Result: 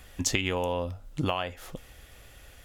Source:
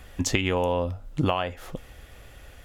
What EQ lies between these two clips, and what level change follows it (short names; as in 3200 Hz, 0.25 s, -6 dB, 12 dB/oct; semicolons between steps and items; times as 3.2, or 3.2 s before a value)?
high shelf 2700 Hz +7 dB; -5.0 dB